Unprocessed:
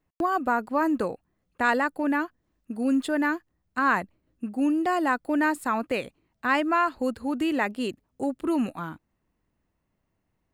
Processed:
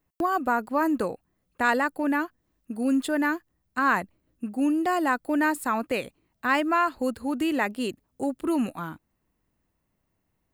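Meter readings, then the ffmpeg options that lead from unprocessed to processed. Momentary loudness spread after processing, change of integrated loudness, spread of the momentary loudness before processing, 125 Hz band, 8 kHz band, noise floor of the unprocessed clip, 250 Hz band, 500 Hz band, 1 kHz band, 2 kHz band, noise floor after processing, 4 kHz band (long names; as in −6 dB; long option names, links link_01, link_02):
11 LU, 0.0 dB, 11 LU, 0.0 dB, +4.0 dB, −77 dBFS, 0.0 dB, 0.0 dB, 0.0 dB, 0.0 dB, −76 dBFS, +1.0 dB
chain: -af "highshelf=frequency=10000:gain=10"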